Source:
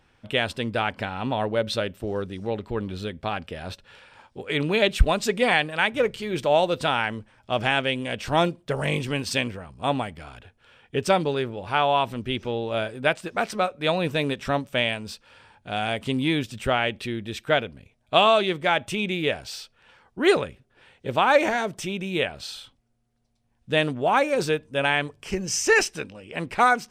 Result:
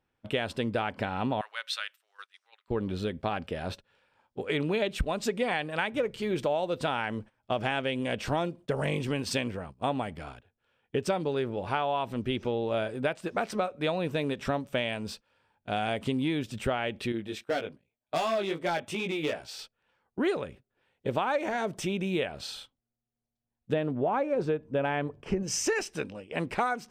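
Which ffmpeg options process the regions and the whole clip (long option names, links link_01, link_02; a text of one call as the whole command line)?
ffmpeg -i in.wav -filter_complex "[0:a]asettb=1/sr,asplit=3[link_01][link_02][link_03];[link_01]atrim=end=1.414[link_04];[link_02]atrim=start=1.41:end=2.68,asetpts=PTS-STARTPTS,afade=type=in:duration=0.004:curve=qsin,afade=type=out:start_time=1.266:duration=0.004:curve=qsin,highpass=frequency=1300:width=0.5412,highpass=frequency=1300:width=1.3066,deesser=0.35[link_05];[link_03]atrim=start=2.676[link_06];[link_04][link_05]acrossfade=duration=0.004:curve1=hsin:curve2=qsin[link_07];[link_07][link_06]acrossfade=duration=0.004:curve1=qsin:curve2=hsin,asettb=1/sr,asplit=3[link_08][link_09][link_10];[link_08]atrim=end=17.124[link_11];[link_09]atrim=start=17.12:end=19.59,asetpts=PTS-STARTPTS,afade=type=in:duration=0.004:curve=qsin,afade=type=out:start_time=2.466:duration=0.004:curve=qsin,volume=18dB,asoftclip=hard,volume=-18dB,lowshelf=frequency=130:gain=-11,flanger=delay=17:depth=3.1:speed=2.6[link_12];[link_10]atrim=start=19.586[link_13];[link_11][link_12]acrossfade=duration=0.004:curve1=hsin:curve2=qsin[link_14];[link_14][link_13]acrossfade=duration=0.004:curve1=qsin:curve2=hsin,asettb=1/sr,asplit=3[link_15][link_16][link_17];[link_15]atrim=end=23.734[link_18];[link_16]atrim=start=23.73:end=25.43,asetpts=PTS-STARTPTS,afade=type=in:duration=0.004:curve=qsin,afade=type=out:start_time=1.696:duration=0.004:curve=qsin,lowpass=frequency=1000:poles=1,acontrast=28[link_19];[link_17]atrim=start=25.426[link_20];[link_18][link_19]acrossfade=duration=0.004:curve1=hsin:curve2=qsin[link_21];[link_21][link_20]acrossfade=duration=0.004:curve1=qsin:curve2=hsin,agate=range=-17dB:threshold=-42dB:ratio=16:detection=peak,equalizer=frequency=370:width=0.31:gain=5.5,acompressor=threshold=-22dB:ratio=6,volume=-3.5dB" out.wav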